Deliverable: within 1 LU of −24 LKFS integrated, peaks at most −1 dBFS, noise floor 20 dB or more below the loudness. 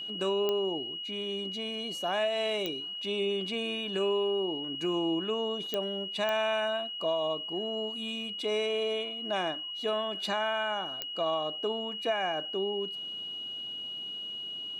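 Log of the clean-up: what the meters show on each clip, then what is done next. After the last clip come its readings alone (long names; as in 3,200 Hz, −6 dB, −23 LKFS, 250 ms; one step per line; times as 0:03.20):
number of clicks 5; interfering tone 2,900 Hz; level of the tone −36 dBFS; integrated loudness −31.5 LKFS; sample peak −14.5 dBFS; target loudness −24.0 LKFS
→ click removal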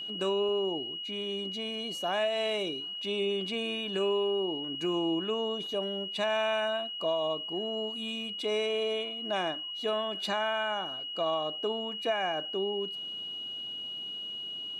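number of clicks 0; interfering tone 2,900 Hz; level of the tone −36 dBFS
→ notch filter 2,900 Hz, Q 30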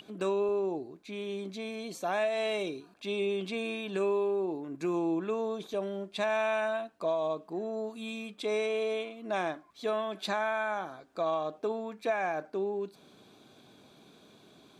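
interfering tone none found; integrated loudness −33.0 LKFS; sample peak −18.5 dBFS; target loudness −24.0 LKFS
→ level +9 dB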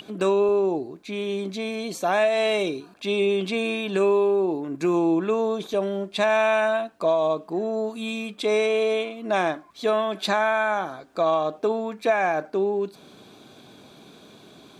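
integrated loudness −24.0 LKFS; sample peak −9.5 dBFS; background noise floor −51 dBFS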